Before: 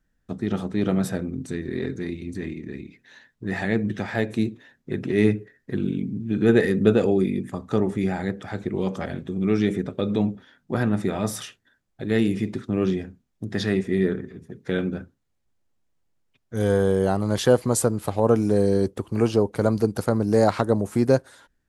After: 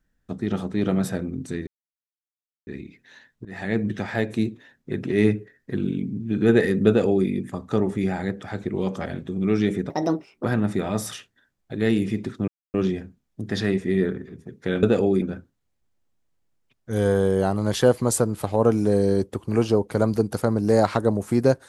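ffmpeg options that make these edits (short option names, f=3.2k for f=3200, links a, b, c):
-filter_complex "[0:a]asplit=9[a][b][c][d][e][f][g][h][i];[a]atrim=end=1.67,asetpts=PTS-STARTPTS,afade=t=out:st=1.666:d=0.004:c=hsin[j];[b]atrim=start=1.67:end=2.67,asetpts=PTS-STARTPTS,volume=0[k];[c]atrim=start=2.67:end=3.45,asetpts=PTS-STARTPTS,afade=t=in:d=0.004:c=hsin,afade=t=out:st=0.776:d=0.004:c=hsin:silence=0.112202[l];[d]atrim=start=3.45:end=9.904,asetpts=PTS-STARTPTS,afade=t=in:d=0.33:silence=0.112202[m];[e]atrim=start=9.9:end=10.73,asetpts=PTS-STARTPTS,asetrate=67914,aresample=44100,atrim=end_sample=23768,asetpts=PTS-STARTPTS[n];[f]atrim=start=10.726:end=12.77,asetpts=PTS-STARTPTS,afade=t=out:st=2.04:d=0.004:c=hsin,apad=pad_dur=0.26[o];[g]atrim=start=12.77:end=14.862,asetpts=PTS-STARTPTS,afade=t=in:d=0.004:c=hsin[p];[h]atrim=start=6.878:end=7.272[q];[i]atrim=start=14.858[r];[j][k][l][m]concat=n=4:v=0:a=1[s];[s][n]acrossfade=d=0.004:c1=hsin:c2=hsin[t];[o][p]concat=n=2:v=0:a=1[u];[t][u]acrossfade=d=0.004:c1=hsin:c2=hsin[v];[v][q]acrossfade=d=0.004:c1=hsin:c2=hsin[w];[w][r]acrossfade=d=0.004:c1=hsin:c2=hsin"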